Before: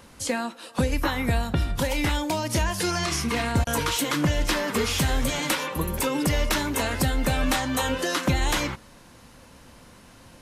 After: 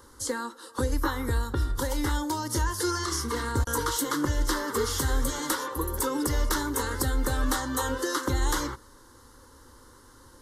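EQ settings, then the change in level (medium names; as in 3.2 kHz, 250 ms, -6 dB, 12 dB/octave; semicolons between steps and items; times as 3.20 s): static phaser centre 670 Hz, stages 6; 0.0 dB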